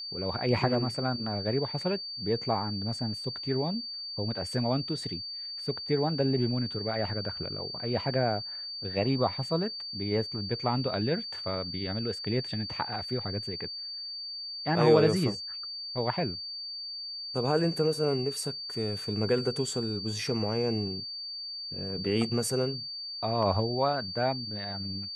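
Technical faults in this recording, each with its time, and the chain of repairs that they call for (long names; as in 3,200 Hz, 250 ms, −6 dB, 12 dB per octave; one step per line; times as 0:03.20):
whistle 4,600 Hz −36 dBFS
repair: notch filter 4,600 Hz, Q 30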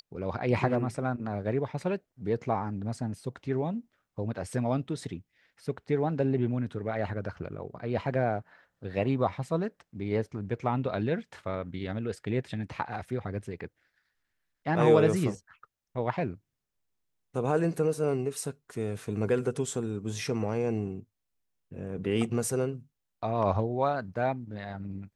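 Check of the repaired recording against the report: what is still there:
none of them is left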